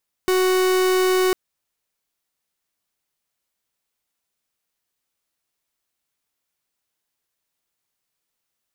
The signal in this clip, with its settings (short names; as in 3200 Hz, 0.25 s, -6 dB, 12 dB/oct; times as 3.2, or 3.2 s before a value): pulse 371 Hz, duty 44% -18 dBFS 1.05 s